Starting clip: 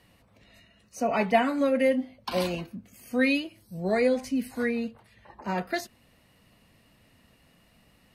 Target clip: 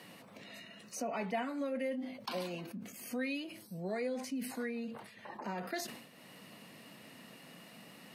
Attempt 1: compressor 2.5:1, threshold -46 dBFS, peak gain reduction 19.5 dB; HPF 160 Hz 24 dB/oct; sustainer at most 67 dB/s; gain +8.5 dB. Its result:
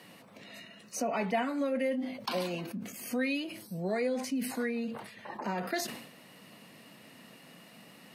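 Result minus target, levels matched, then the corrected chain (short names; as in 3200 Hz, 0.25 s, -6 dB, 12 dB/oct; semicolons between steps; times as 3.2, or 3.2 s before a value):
compressor: peak gain reduction -5.5 dB
compressor 2.5:1, threshold -55.5 dBFS, peak gain reduction 25 dB; HPF 160 Hz 24 dB/oct; sustainer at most 67 dB/s; gain +8.5 dB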